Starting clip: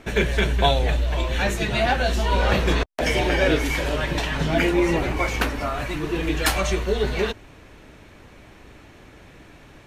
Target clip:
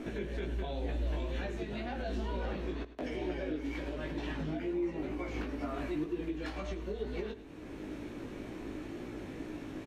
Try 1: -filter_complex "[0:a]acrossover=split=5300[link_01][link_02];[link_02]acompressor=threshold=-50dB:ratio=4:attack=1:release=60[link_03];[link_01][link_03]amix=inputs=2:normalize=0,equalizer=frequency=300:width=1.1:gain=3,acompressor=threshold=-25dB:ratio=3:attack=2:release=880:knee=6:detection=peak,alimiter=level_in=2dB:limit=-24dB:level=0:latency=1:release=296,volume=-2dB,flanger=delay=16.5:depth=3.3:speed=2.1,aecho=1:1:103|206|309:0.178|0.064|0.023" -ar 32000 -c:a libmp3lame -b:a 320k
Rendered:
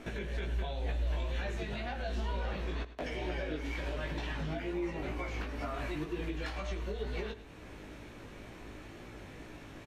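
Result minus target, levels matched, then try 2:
250 Hz band −5.0 dB
-filter_complex "[0:a]acrossover=split=5300[link_01][link_02];[link_02]acompressor=threshold=-50dB:ratio=4:attack=1:release=60[link_03];[link_01][link_03]amix=inputs=2:normalize=0,equalizer=frequency=300:width=1.1:gain=14,acompressor=threshold=-25dB:ratio=3:attack=2:release=880:knee=6:detection=peak,alimiter=level_in=2dB:limit=-24dB:level=0:latency=1:release=296,volume=-2dB,flanger=delay=16.5:depth=3.3:speed=2.1,aecho=1:1:103|206|309:0.178|0.064|0.023" -ar 32000 -c:a libmp3lame -b:a 320k

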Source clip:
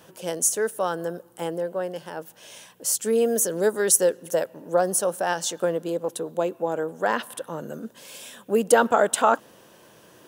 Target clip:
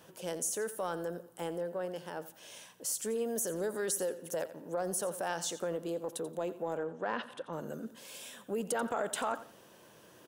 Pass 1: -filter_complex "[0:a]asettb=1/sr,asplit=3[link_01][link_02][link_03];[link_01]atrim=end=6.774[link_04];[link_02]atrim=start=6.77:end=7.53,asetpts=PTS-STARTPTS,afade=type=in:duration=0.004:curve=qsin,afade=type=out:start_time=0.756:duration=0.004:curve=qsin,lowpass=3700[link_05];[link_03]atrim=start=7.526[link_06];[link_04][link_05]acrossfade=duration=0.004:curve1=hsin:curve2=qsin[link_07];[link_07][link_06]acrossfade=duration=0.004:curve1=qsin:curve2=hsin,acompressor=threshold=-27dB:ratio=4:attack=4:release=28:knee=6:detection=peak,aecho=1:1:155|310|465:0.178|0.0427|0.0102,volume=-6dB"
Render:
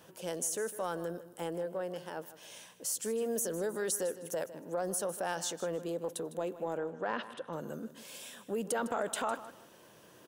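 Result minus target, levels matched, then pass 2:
echo 68 ms late
-filter_complex "[0:a]asettb=1/sr,asplit=3[link_01][link_02][link_03];[link_01]atrim=end=6.774[link_04];[link_02]atrim=start=6.77:end=7.53,asetpts=PTS-STARTPTS,afade=type=in:duration=0.004:curve=qsin,afade=type=out:start_time=0.756:duration=0.004:curve=qsin,lowpass=3700[link_05];[link_03]atrim=start=7.526[link_06];[link_04][link_05]acrossfade=duration=0.004:curve1=hsin:curve2=qsin[link_07];[link_07][link_06]acrossfade=duration=0.004:curve1=qsin:curve2=hsin,acompressor=threshold=-27dB:ratio=4:attack=4:release=28:knee=6:detection=peak,aecho=1:1:87|174|261:0.178|0.0427|0.0102,volume=-6dB"

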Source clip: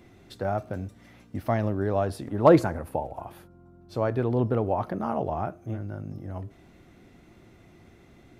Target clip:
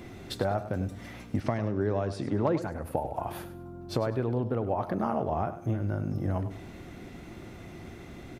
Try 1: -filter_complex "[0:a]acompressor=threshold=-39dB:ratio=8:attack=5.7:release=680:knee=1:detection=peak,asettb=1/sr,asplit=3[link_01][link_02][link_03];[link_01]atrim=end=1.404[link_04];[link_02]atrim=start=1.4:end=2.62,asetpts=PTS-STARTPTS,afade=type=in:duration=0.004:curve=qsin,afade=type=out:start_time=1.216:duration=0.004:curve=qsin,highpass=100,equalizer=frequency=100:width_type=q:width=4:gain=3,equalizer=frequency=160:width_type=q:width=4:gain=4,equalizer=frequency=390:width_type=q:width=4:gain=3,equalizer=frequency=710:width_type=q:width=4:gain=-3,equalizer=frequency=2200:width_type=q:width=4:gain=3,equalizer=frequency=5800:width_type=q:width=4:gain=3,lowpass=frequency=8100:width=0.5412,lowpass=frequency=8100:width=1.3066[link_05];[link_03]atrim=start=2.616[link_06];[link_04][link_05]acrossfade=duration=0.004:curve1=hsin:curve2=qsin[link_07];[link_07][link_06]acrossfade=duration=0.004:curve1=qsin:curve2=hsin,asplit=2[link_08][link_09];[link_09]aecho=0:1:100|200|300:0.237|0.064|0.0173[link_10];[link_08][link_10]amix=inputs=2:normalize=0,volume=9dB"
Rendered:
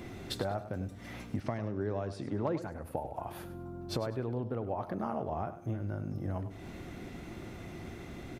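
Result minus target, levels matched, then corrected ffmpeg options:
downward compressor: peak gain reduction +6 dB
-filter_complex "[0:a]acompressor=threshold=-32dB:ratio=8:attack=5.7:release=680:knee=1:detection=peak,asettb=1/sr,asplit=3[link_01][link_02][link_03];[link_01]atrim=end=1.404[link_04];[link_02]atrim=start=1.4:end=2.62,asetpts=PTS-STARTPTS,afade=type=in:duration=0.004:curve=qsin,afade=type=out:start_time=1.216:duration=0.004:curve=qsin,highpass=100,equalizer=frequency=100:width_type=q:width=4:gain=3,equalizer=frequency=160:width_type=q:width=4:gain=4,equalizer=frequency=390:width_type=q:width=4:gain=3,equalizer=frequency=710:width_type=q:width=4:gain=-3,equalizer=frequency=2200:width_type=q:width=4:gain=3,equalizer=frequency=5800:width_type=q:width=4:gain=3,lowpass=frequency=8100:width=0.5412,lowpass=frequency=8100:width=1.3066[link_05];[link_03]atrim=start=2.616[link_06];[link_04][link_05]acrossfade=duration=0.004:curve1=hsin:curve2=qsin[link_07];[link_07][link_06]acrossfade=duration=0.004:curve1=qsin:curve2=hsin,asplit=2[link_08][link_09];[link_09]aecho=0:1:100|200|300:0.237|0.064|0.0173[link_10];[link_08][link_10]amix=inputs=2:normalize=0,volume=9dB"

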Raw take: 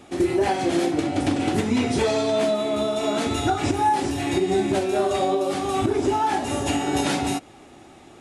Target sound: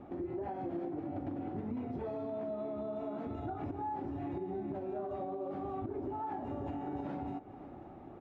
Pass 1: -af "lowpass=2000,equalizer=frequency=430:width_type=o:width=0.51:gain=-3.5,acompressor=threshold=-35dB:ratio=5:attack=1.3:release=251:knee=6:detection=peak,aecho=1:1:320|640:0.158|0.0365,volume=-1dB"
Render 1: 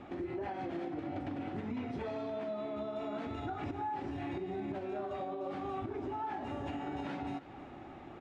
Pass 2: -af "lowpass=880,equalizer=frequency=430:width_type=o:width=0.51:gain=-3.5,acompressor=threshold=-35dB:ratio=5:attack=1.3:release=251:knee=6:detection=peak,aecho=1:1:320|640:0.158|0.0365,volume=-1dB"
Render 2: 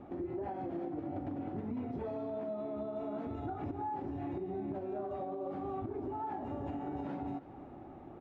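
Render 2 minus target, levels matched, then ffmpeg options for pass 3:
echo 218 ms early
-af "lowpass=880,equalizer=frequency=430:width_type=o:width=0.51:gain=-3.5,acompressor=threshold=-35dB:ratio=5:attack=1.3:release=251:knee=6:detection=peak,aecho=1:1:538|1076:0.158|0.0365,volume=-1dB"

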